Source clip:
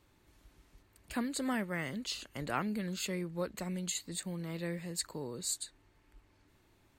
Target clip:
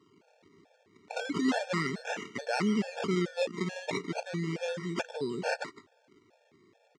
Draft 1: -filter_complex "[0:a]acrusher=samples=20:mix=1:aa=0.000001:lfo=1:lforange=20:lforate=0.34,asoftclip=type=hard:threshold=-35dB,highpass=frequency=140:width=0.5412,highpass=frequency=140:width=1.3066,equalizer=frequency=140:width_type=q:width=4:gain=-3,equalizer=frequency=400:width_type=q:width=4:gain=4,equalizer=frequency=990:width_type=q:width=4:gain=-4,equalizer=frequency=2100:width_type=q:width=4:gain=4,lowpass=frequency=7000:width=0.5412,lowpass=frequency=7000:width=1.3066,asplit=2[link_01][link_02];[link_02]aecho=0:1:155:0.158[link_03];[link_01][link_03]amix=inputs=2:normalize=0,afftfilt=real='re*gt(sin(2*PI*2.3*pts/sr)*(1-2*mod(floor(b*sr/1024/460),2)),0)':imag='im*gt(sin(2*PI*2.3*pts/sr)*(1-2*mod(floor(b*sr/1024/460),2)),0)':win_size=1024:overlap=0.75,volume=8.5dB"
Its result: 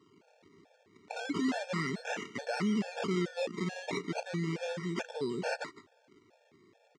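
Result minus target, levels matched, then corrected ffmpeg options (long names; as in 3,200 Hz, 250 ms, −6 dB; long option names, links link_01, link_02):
hard clipping: distortion +13 dB
-filter_complex "[0:a]acrusher=samples=20:mix=1:aa=0.000001:lfo=1:lforange=20:lforate=0.34,asoftclip=type=hard:threshold=-26dB,highpass=frequency=140:width=0.5412,highpass=frequency=140:width=1.3066,equalizer=frequency=140:width_type=q:width=4:gain=-3,equalizer=frequency=400:width_type=q:width=4:gain=4,equalizer=frequency=990:width_type=q:width=4:gain=-4,equalizer=frequency=2100:width_type=q:width=4:gain=4,lowpass=frequency=7000:width=0.5412,lowpass=frequency=7000:width=1.3066,asplit=2[link_01][link_02];[link_02]aecho=0:1:155:0.158[link_03];[link_01][link_03]amix=inputs=2:normalize=0,afftfilt=real='re*gt(sin(2*PI*2.3*pts/sr)*(1-2*mod(floor(b*sr/1024/460),2)),0)':imag='im*gt(sin(2*PI*2.3*pts/sr)*(1-2*mod(floor(b*sr/1024/460),2)),0)':win_size=1024:overlap=0.75,volume=8.5dB"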